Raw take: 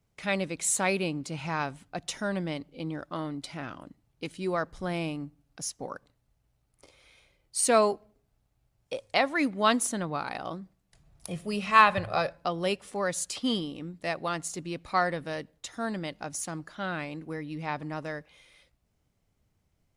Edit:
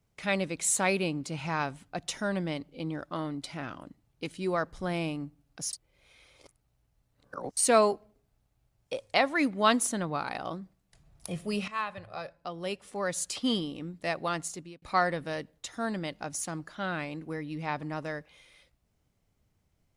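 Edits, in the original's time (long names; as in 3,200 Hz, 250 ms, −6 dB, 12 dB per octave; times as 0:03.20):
0:05.73–0:07.57: reverse
0:11.68–0:13.28: fade in quadratic, from −15 dB
0:14.42–0:14.82: fade out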